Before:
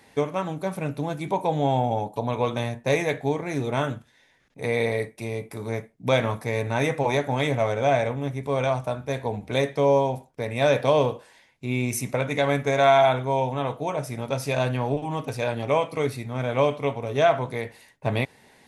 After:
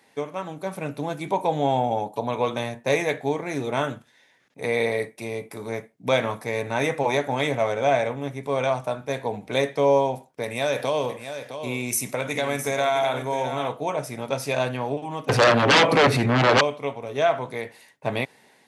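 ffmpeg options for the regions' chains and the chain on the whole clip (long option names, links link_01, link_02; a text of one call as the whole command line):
ffmpeg -i in.wav -filter_complex "[0:a]asettb=1/sr,asplit=3[link_01][link_02][link_03];[link_01]atrim=end=10.434[link_04];[link_02]atrim=start=10.43:end=13.68,asetpts=PTS-STARTPTS,afade=type=in:duration=0.004:curve=qsin,afade=type=out:start_time=3.246:duration=0.004:curve=qsin,aemphasis=mode=production:type=cd,acompressor=threshold=-23dB:ratio=2.5:attack=3.2:release=140:knee=1:detection=peak,aecho=1:1:661:0.316,atrim=end_sample=143325[link_05];[link_03]atrim=start=13.676[link_06];[link_04][link_05]acrossfade=duration=0.004:curve1=hsin:curve2=qsin[link_07];[link_07][link_06]acrossfade=duration=0.004:curve1=qsin:curve2=hsin,asettb=1/sr,asplit=3[link_08][link_09][link_10];[link_08]atrim=end=15.294[link_11];[link_09]atrim=start=15.29:end=16.61,asetpts=PTS-STARTPTS,afade=type=in:duration=0.004:curve=qsin,afade=type=out:start_time=1.316:duration=0.004:curve=qsin,aemphasis=mode=reproduction:type=75kf,acompressor=mode=upward:threshold=-25dB:ratio=2.5:attack=3.2:release=140:knee=2.83:detection=peak,aeval=exprs='0.335*sin(PI/2*6.31*val(0)/0.335)':channel_layout=same[link_12];[link_10]atrim=start=16.606[link_13];[link_11][link_12]acrossfade=duration=0.004:curve1=hsin:curve2=qsin[link_14];[link_14][link_13]acrossfade=duration=0.004:curve1=qsin:curve2=hsin,highpass=110,lowshelf=frequency=170:gain=-7.5,dynaudnorm=framelen=270:gausssize=5:maxgain=6dB,volume=-4dB" out.wav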